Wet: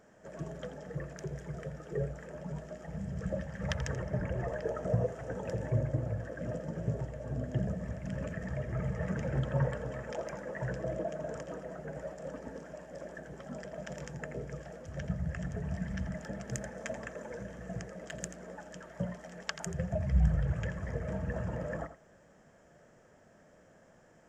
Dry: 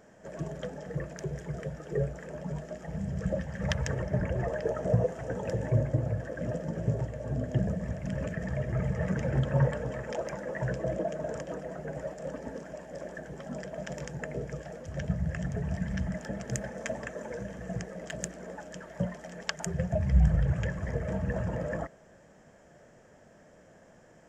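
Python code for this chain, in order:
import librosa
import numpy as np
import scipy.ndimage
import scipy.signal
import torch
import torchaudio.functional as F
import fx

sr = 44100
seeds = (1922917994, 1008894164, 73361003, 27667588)

y = fx.peak_eq(x, sr, hz=1300.0, db=3.5, octaves=0.35)
y = y + 10.0 ** (-12.5 / 20.0) * np.pad(y, (int(84 * sr / 1000.0), 0))[:len(y)]
y = y * 10.0 ** (-4.5 / 20.0)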